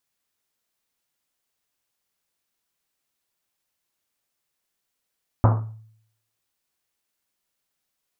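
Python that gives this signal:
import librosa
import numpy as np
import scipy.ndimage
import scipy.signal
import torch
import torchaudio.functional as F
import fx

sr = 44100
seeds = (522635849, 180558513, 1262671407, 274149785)

y = fx.risset_drum(sr, seeds[0], length_s=1.1, hz=110.0, decay_s=0.69, noise_hz=770.0, noise_width_hz=970.0, noise_pct=25)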